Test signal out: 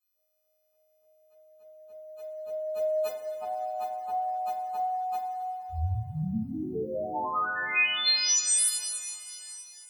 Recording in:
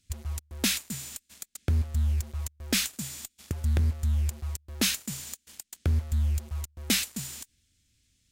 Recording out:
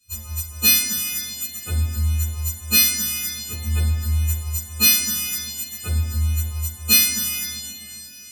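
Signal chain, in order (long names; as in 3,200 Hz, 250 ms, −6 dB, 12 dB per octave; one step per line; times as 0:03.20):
every partial snapped to a pitch grid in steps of 3 semitones
coupled-rooms reverb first 0.25 s, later 3.5 s, from −18 dB, DRR −9.5 dB
level −7 dB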